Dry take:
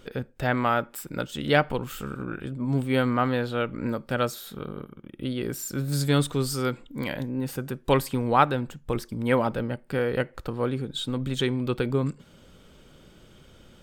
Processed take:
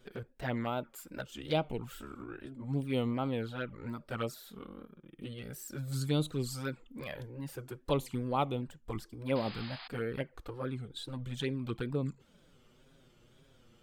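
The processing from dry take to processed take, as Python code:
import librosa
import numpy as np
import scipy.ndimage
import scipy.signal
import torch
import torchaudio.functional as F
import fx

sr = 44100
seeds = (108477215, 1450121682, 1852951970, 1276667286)

y = fx.env_flanger(x, sr, rest_ms=8.9, full_db=-19.5)
y = fx.wow_flutter(y, sr, seeds[0], rate_hz=2.1, depth_cents=110.0)
y = fx.spec_paint(y, sr, seeds[1], shape='noise', start_s=9.35, length_s=0.53, low_hz=660.0, high_hz=5100.0, level_db=-40.0)
y = y * librosa.db_to_amplitude(-7.5)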